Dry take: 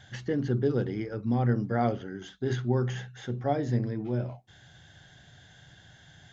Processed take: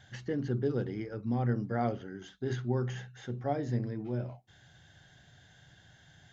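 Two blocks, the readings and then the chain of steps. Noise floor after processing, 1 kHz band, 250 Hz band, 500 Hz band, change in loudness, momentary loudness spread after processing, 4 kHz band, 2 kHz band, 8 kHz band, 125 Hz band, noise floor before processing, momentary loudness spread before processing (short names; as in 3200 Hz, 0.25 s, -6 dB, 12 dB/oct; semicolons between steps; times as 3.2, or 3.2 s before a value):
-61 dBFS, -4.5 dB, -4.5 dB, -4.5 dB, -4.5 dB, 10 LU, -5.5 dB, -4.5 dB, n/a, -4.5 dB, -56 dBFS, 10 LU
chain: notch 3400 Hz, Q 26; gain -4.5 dB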